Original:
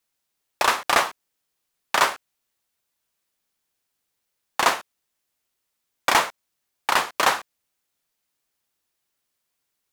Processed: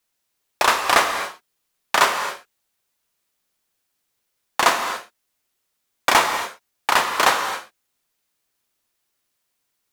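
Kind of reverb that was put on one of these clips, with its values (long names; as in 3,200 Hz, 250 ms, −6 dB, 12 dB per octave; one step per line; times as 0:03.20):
reverb whose tail is shaped and stops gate 300 ms flat, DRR 6 dB
level +2.5 dB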